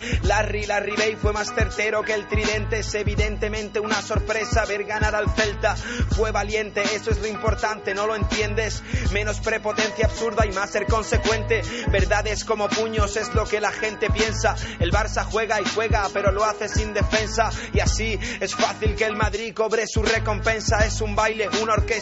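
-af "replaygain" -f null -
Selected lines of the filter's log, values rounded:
track_gain = +3.6 dB
track_peak = 0.401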